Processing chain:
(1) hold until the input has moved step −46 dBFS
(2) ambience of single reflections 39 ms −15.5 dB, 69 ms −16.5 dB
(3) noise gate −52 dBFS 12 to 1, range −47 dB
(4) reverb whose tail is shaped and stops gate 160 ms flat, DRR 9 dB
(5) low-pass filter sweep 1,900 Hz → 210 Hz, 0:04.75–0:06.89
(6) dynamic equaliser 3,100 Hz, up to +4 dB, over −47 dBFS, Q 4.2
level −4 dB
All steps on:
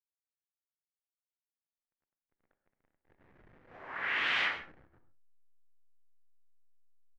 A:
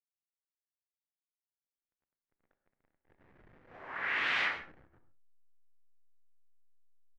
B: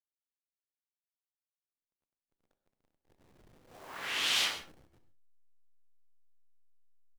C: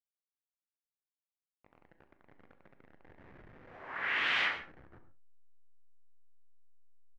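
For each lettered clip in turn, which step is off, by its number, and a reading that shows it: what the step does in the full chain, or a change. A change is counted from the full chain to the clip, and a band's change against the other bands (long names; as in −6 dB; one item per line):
6, 4 kHz band −3.0 dB
5, change in integrated loudness +1.0 LU
3, change in momentary loudness spread +2 LU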